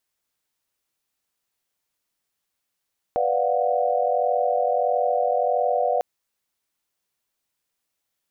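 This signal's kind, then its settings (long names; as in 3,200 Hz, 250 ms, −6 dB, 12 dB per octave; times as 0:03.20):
held notes B4/D5/F5/F#5 sine, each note −24.5 dBFS 2.85 s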